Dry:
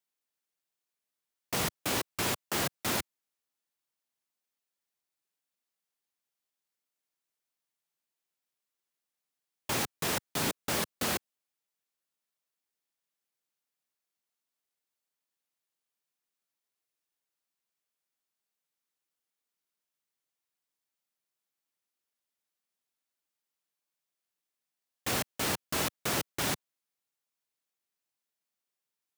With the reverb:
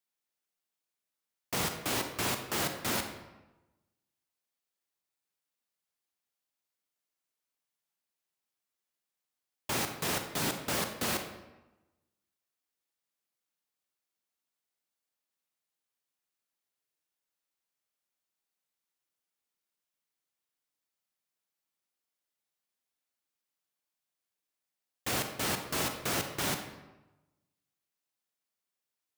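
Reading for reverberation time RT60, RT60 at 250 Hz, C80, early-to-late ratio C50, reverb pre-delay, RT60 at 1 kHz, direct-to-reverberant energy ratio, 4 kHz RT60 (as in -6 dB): 1.0 s, 1.1 s, 10.0 dB, 7.0 dB, 30 ms, 1.0 s, 6.0 dB, 0.70 s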